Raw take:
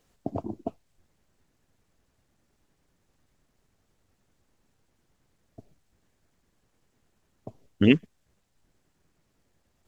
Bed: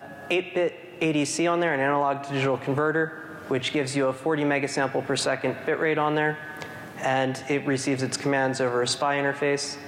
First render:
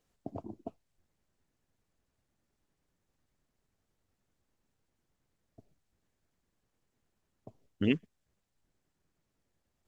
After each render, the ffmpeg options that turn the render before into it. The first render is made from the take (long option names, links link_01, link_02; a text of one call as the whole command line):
ffmpeg -i in.wav -af "volume=-9.5dB" out.wav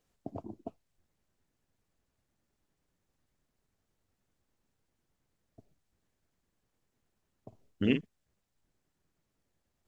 ffmpeg -i in.wav -filter_complex "[0:a]asettb=1/sr,asplit=3[link_01][link_02][link_03];[link_01]atrim=end=7.484[link_04];[link_02]atrim=start=7.48:end=8.01,asetpts=PTS-STARTPTS,afade=type=in:duration=0.004:curve=qsin,afade=type=out:start_time=0.526:duration=0.004:curve=qsin,asplit=2[link_05][link_06];[link_06]adelay=44,volume=-7dB[link_07];[link_05][link_07]amix=inputs=2:normalize=0,atrim=end_sample=23373[link_08];[link_03]atrim=start=8.006[link_09];[link_04][link_08]acrossfade=duration=0.004:curve1=hsin:curve2=qsin[link_10];[link_10][link_09]acrossfade=duration=0.004:curve1=qsin:curve2=hsin" out.wav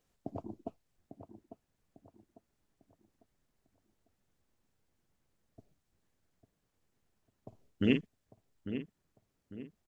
ffmpeg -i in.wav -filter_complex "[0:a]asplit=2[link_01][link_02];[link_02]adelay=849,lowpass=frequency=2000:poles=1,volume=-10dB,asplit=2[link_03][link_04];[link_04]adelay=849,lowpass=frequency=2000:poles=1,volume=0.4,asplit=2[link_05][link_06];[link_06]adelay=849,lowpass=frequency=2000:poles=1,volume=0.4,asplit=2[link_07][link_08];[link_08]adelay=849,lowpass=frequency=2000:poles=1,volume=0.4[link_09];[link_01][link_03][link_05][link_07][link_09]amix=inputs=5:normalize=0" out.wav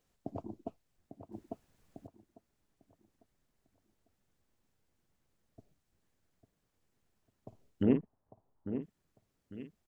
ffmpeg -i in.wav -filter_complex "[0:a]asplit=3[link_01][link_02][link_03];[link_01]afade=type=out:start_time=7.82:duration=0.02[link_04];[link_02]lowpass=frequency=920:width_type=q:width=2.6,afade=type=in:start_time=7.82:duration=0.02,afade=type=out:start_time=8.81:duration=0.02[link_05];[link_03]afade=type=in:start_time=8.81:duration=0.02[link_06];[link_04][link_05][link_06]amix=inputs=3:normalize=0,asplit=3[link_07][link_08][link_09];[link_07]atrim=end=1.322[link_10];[link_08]atrim=start=1.318:end=2.072,asetpts=PTS-STARTPTS,volume=9dB[link_11];[link_09]atrim=start=2.068[link_12];[link_10][link_11]acrossfade=duration=0.004:curve1=hsin:curve2=hsin[link_13];[link_13][link_12]acrossfade=duration=0.004:curve1=hsin:curve2=hsin" out.wav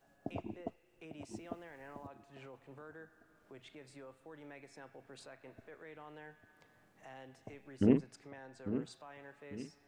ffmpeg -i in.wav -i bed.wav -filter_complex "[1:a]volume=-29dB[link_01];[0:a][link_01]amix=inputs=2:normalize=0" out.wav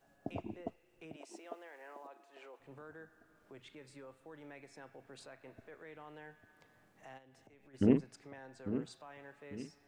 ffmpeg -i in.wav -filter_complex "[0:a]asettb=1/sr,asplit=3[link_01][link_02][link_03];[link_01]atrim=end=1.164[link_04];[link_02]atrim=start=1.16:end=2.6,asetpts=PTS-STARTPTS,afade=type=in:duration=0.004:curve=qsin,afade=type=out:start_time=1.436:duration=0.004:curve=qsin,highpass=frequency=360:width=0.5412,highpass=frequency=360:width=1.3066[link_05];[link_03]atrim=start=2.596[link_06];[link_04][link_05]acrossfade=duration=0.004:curve1=hsin:curve2=qsin[link_07];[link_07][link_06]acrossfade=duration=0.004:curve1=qsin:curve2=hsin,asettb=1/sr,asplit=3[link_08][link_09][link_10];[link_08]atrim=end=3.574[link_11];[link_09]atrim=start=3.57:end=4.04,asetpts=PTS-STARTPTS,afade=type=in:duration=0.004:curve=qsin,afade=type=out:start_time=0.466:duration=0.004:curve=qsin,asuperstop=centerf=690:order=4:qfactor=4.3[link_12];[link_10]atrim=start=4.036[link_13];[link_11][link_12]acrossfade=duration=0.004:curve1=hsin:curve2=qsin[link_14];[link_14][link_13]acrossfade=duration=0.004:curve1=qsin:curve2=hsin,asplit=3[link_15][link_16][link_17];[link_15]afade=type=out:start_time=7.17:duration=0.02[link_18];[link_16]acompressor=threshold=-59dB:ratio=6:attack=3.2:release=140:knee=1:detection=peak,afade=type=in:start_time=7.17:duration=0.02,afade=type=out:start_time=7.73:duration=0.02[link_19];[link_17]afade=type=in:start_time=7.73:duration=0.02[link_20];[link_18][link_19][link_20]amix=inputs=3:normalize=0" out.wav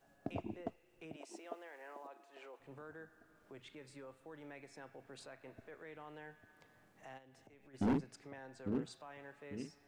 ffmpeg -i in.wav -af "asoftclip=type=hard:threshold=-29dB" out.wav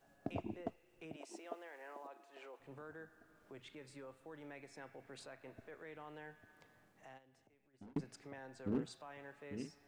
ffmpeg -i in.wav -filter_complex "[0:a]asettb=1/sr,asplit=3[link_01][link_02][link_03];[link_01]atrim=end=4.784[link_04];[link_02]atrim=start=4.78:end=5.22,asetpts=PTS-STARTPTS,afade=type=in:duration=0.004:curve=qsin,afade=type=out:start_time=0.436:duration=0.004:curve=qsin,equalizer=frequency=2100:width=4.9:gain=7[link_05];[link_03]atrim=start=5.216[link_06];[link_04][link_05]acrossfade=duration=0.004:curve1=hsin:curve2=qsin[link_07];[link_07][link_06]acrossfade=duration=0.004:curve1=qsin:curve2=hsin,asplit=2[link_08][link_09];[link_08]atrim=end=7.96,asetpts=PTS-STARTPTS,afade=type=out:start_time=6.6:duration=1.36[link_10];[link_09]atrim=start=7.96,asetpts=PTS-STARTPTS,afade=type=in:duration=0.004:curve=hsin[link_11];[link_10][link_11]concat=n=2:v=0:a=1" out.wav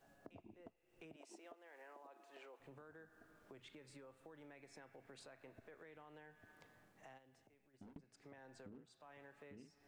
ffmpeg -i in.wav -af "acompressor=threshold=-55dB:ratio=12" out.wav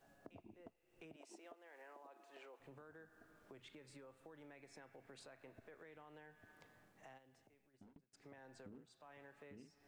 ffmpeg -i in.wav -filter_complex "[0:a]asplit=2[link_01][link_02];[link_01]atrim=end=8.13,asetpts=PTS-STARTPTS,afade=type=out:start_time=7.58:duration=0.55:silence=0.0944061[link_03];[link_02]atrim=start=8.13,asetpts=PTS-STARTPTS,afade=type=in:duration=0.004:curve=hsin:silence=0.0944061[link_04];[link_03][link_04]concat=n=2:v=0:a=1" out.wav